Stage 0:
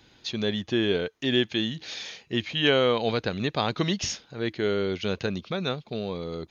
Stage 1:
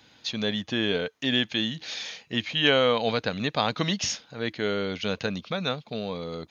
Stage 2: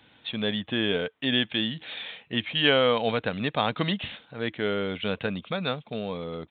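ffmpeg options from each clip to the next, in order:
-af "highpass=f=160:p=1,equalizer=f=370:t=o:w=0.24:g=-12,volume=1.26"
-af "aresample=8000,aresample=44100"

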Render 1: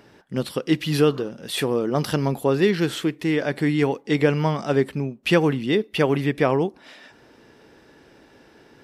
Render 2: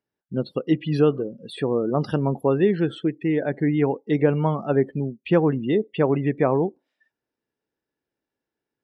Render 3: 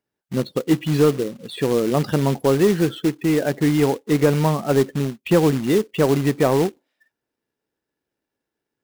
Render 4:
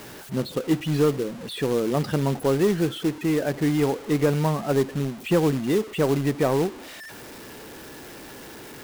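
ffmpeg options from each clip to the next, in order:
-filter_complex "[0:a]afftdn=nr=35:nf=-30,acrossover=split=1400[s0][s1];[s1]acompressor=threshold=0.0112:ratio=6[s2];[s0][s2]amix=inputs=2:normalize=0"
-af "acrusher=bits=3:mode=log:mix=0:aa=0.000001,acontrast=84,volume=0.668"
-af "aeval=exprs='val(0)+0.5*0.0335*sgn(val(0))':c=same,volume=0.562"

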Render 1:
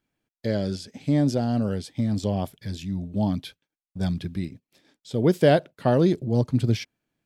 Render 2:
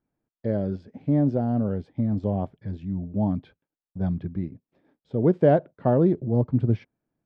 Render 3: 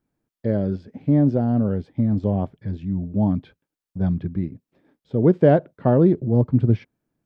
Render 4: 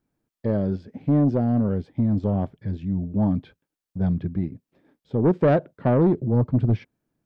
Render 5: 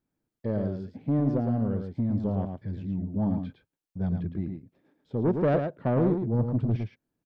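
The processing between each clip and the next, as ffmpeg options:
-af "lowpass=1100"
-af "equalizer=f=710:w=1.5:g=-3,volume=1.68"
-af "asoftclip=type=tanh:threshold=0.251"
-af "aecho=1:1:111:0.501,volume=0.501"

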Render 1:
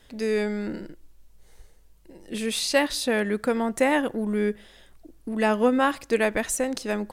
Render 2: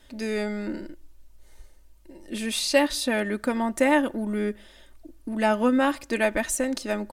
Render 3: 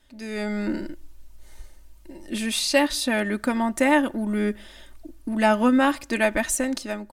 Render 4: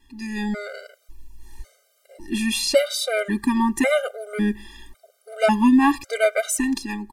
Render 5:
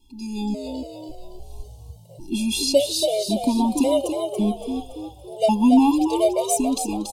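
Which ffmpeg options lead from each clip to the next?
-af "aecho=1:1:3.3:0.54,volume=0.891"
-af "equalizer=f=470:w=3.3:g=-5.5,dynaudnorm=f=100:g=9:m=3.98,volume=0.501"
-af "afftfilt=real='re*gt(sin(2*PI*0.91*pts/sr)*(1-2*mod(floor(b*sr/1024/400),2)),0)':imag='im*gt(sin(2*PI*0.91*pts/sr)*(1-2*mod(floor(b*sr/1024/400),2)),0)':win_size=1024:overlap=0.75,volume=1.68"
-filter_complex "[0:a]asuperstop=centerf=1600:order=8:qfactor=0.86,asplit=6[s0][s1][s2][s3][s4][s5];[s1]adelay=283,afreqshift=52,volume=0.501[s6];[s2]adelay=566,afreqshift=104,volume=0.221[s7];[s3]adelay=849,afreqshift=156,volume=0.0966[s8];[s4]adelay=1132,afreqshift=208,volume=0.0427[s9];[s5]adelay=1415,afreqshift=260,volume=0.0188[s10];[s0][s6][s7][s8][s9][s10]amix=inputs=6:normalize=0"

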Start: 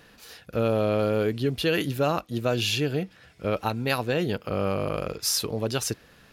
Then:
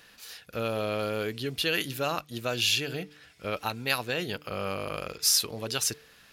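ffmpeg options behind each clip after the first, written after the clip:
-af "tiltshelf=f=1100:g=-6,bandreject=f=148.4:t=h:w=4,bandreject=f=296.8:t=h:w=4,bandreject=f=445.2:t=h:w=4,volume=0.708"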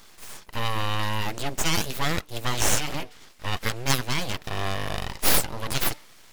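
-af "aeval=exprs='abs(val(0))':c=same,volume=2.11"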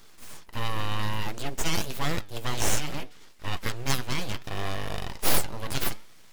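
-filter_complex "[0:a]asplit=2[s0][s1];[s1]acrusher=samples=37:mix=1:aa=0.000001:lfo=1:lforange=37:lforate=0.34,volume=0.316[s2];[s0][s2]amix=inputs=2:normalize=0,flanger=delay=2.1:depth=8.9:regen=83:speed=0.61:shape=sinusoidal"

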